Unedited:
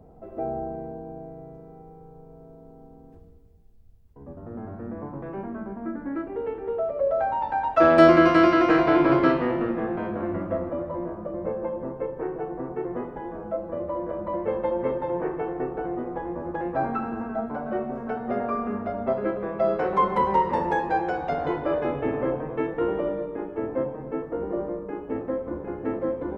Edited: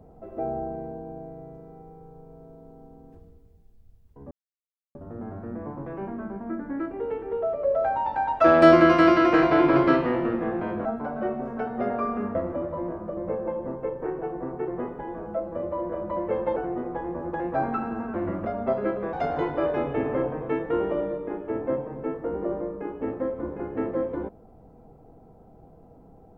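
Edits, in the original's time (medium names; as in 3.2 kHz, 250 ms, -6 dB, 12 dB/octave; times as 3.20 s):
4.31 s: insert silence 0.64 s
10.21–10.52 s: swap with 17.35–18.85 s
14.73–15.77 s: delete
19.53–21.21 s: delete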